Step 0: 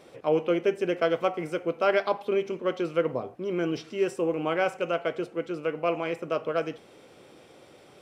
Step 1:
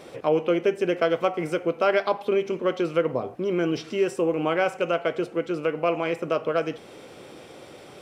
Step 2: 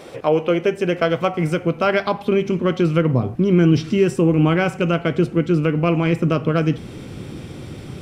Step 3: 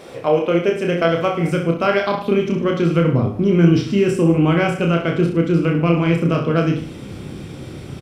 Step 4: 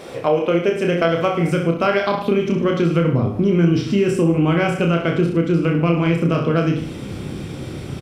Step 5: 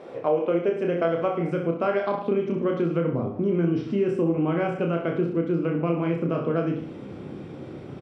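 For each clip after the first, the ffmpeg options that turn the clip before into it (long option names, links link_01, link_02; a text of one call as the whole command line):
ffmpeg -i in.wav -af "acompressor=threshold=-36dB:ratio=1.5,volume=8dB" out.wav
ffmpeg -i in.wav -af "asubboost=boost=12:cutoff=170,volume=5.5dB" out.wav
ffmpeg -i in.wav -af "aecho=1:1:30|64.5|104.2|149.8|202.3:0.631|0.398|0.251|0.158|0.1,volume=-1dB" out.wav
ffmpeg -i in.wav -af "acompressor=threshold=-19dB:ratio=2,volume=3dB" out.wav
ffmpeg -i in.wav -af "bandpass=frequency=500:width_type=q:width=0.53:csg=0,volume=-5dB" out.wav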